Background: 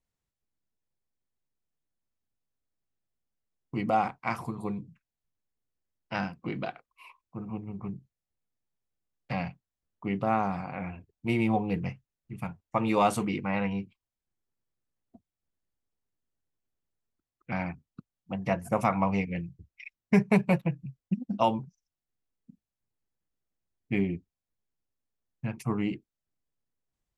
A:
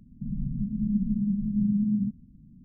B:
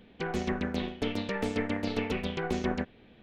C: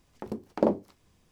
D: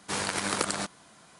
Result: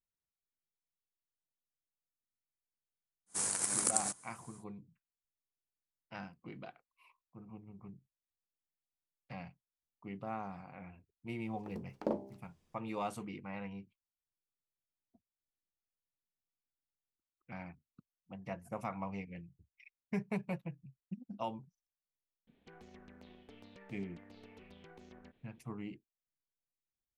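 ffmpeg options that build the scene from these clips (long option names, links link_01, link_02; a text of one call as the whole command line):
ffmpeg -i bed.wav -i cue0.wav -i cue1.wav -i cue2.wav -i cue3.wav -filter_complex "[0:a]volume=-14.5dB[link_01];[4:a]highshelf=frequency=5500:width_type=q:width=1.5:gain=13.5[link_02];[3:a]bandreject=frequency=66.26:width_type=h:width=4,bandreject=frequency=132.52:width_type=h:width=4,bandreject=frequency=198.78:width_type=h:width=4,bandreject=frequency=265.04:width_type=h:width=4,bandreject=frequency=331.3:width_type=h:width=4,bandreject=frequency=397.56:width_type=h:width=4,bandreject=frequency=463.82:width_type=h:width=4,bandreject=frequency=530.08:width_type=h:width=4,bandreject=frequency=596.34:width_type=h:width=4,bandreject=frequency=662.6:width_type=h:width=4,bandreject=frequency=728.86:width_type=h:width=4,bandreject=frequency=795.12:width_type=h:width=4,bandreject=frequency=861.38:width_type=h:width=4,bandreject=frequency=927.64:width_type=h:width=4,bandreject=frequency=993.9:width_type=h:width=4[link_03];[2:a]acompressor=threshold=-39dB:ratio=5:attack=14:release=59:knee=1:detection=rms[link_04];[link_02]atrim=end=1.39,asetpts=PTS-STARTPTS,volume=-12.5dB,afade=type=in:duration=0.1,afade=type=out:start_time=1.29:duration=0.1,adelay=3260[link_05];[link_03]atrim=end=1.31,asetpts=PTS-STARTPTS,volume=-10.5dB,afade=type=in:duration=0.004:curve=hsin,afade=type=out:start_time=1.306:duration=0.004:curve=hsin,adelay=11440[link_06];[link_04]atrim=end=3.22,asetpts=PTS-STARTPTS,volume=-16.5dB,afade=type=in:duration=0.004:curve=hsin,afade=type=out:start_time=3.216:duration=0.004:curve=hsin,adelay=22470[link_07];[link_01][link_05][link_06][link_07]amix=inputs=4:normalize=0" out.wav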